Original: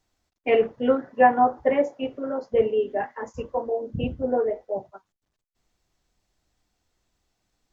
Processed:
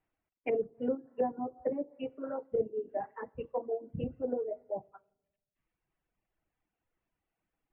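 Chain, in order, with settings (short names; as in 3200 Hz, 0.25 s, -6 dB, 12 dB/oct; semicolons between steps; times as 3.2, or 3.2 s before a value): shoebox room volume 3500 m³, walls furnished, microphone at 0.64 m; reverb removal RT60 0.99 s; treble ducked by the level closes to 410 Hz, closed at -20 dBFS; steep low-pass 2900 Hz 48 dB/oct; low shelf 80 Hz -7 dB; gain -7 dB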